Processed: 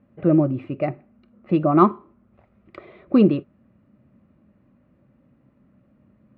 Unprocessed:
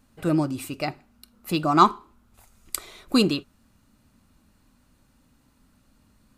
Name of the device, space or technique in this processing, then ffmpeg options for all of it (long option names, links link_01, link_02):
bass cabinet: -af "highpass=76,equalizer=frequency=130:width_type=q:width=4:gain=8,equalizer=frequency=200:width_type=q:width=4:gain=7,equalizer=frequency=350:width_type=q:width=4:gain=6,equalizer=frequency=570:width_type=q:width=4:gain=9,equalizer=frequency=900:width_type=q:width=4:gain=-7,equalizer=frequency=1500:width_type=q:width=4:gain=-7,lowpass=frequency=2100:width=0.5412,lowpass=frequency=2100:width=1.3066,volume=1dB"